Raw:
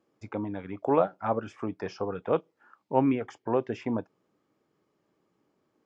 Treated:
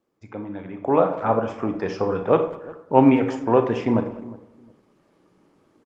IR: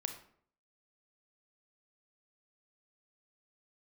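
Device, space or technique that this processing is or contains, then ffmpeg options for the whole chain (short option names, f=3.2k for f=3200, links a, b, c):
speakerphone in a meeting room: -filter_complex "[0:a]asplit=3[a][b][c];[a]afade=t=out:st=2.93:d=0.02[d];[b]highshelf=f=2.1k:g=3.5,afade=t=in:st=2.93:d=0.02,afade=t=out:st=3.69:d=0.02[e];[c]afade=t=in:st=3.69:d=0.02[f];[d][e][f]amix=inputs=3:normalize=0,asplit=2[g][h];[h]adelay=359,lowpass=f=1.1k:p=1,volume=-19dB,asplit=2[i][j];[j]adelay=359,lowpass=f=1.1k:p=1,volume=0.21[k];[g][i][k]amix=inputs=3:normalize=0[l];[1:a]atrim=start_sample=2205[m];[l][m]afir=irnorm=-1:irlink=0,asplit=2[n][o];[o]adelay=200,highpass=300,lowpass=3.4k,asoftclip=type=hard:threshold=-19.5dB,volume=-18dB[p];[n][p]amix=inputs=2:normalize=0,dynaudnorm=f=270:g=7:m=14.5dB" -ar 48000 -c:a libopus -b:a 24k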